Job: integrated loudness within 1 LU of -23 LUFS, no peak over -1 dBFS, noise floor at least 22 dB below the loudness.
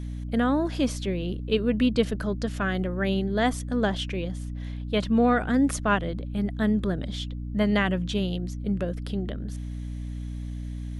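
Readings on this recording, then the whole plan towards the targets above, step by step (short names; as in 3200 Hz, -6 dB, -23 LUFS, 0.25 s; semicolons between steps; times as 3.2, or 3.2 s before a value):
hum 60 Hz; harmonics up to 300 Hz; hum level -31 dBFS; loudness -27.0 LUFS; peak -10.0 dBFS; loudness target -23.0 LUFS
-> notches 60/120/180/240/300 Hz; gain +4 dB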